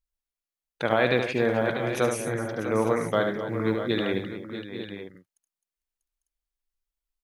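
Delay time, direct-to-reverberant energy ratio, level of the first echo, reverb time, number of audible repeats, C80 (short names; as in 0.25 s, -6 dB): 73 ms, none, -6.5 dB, none, 6, none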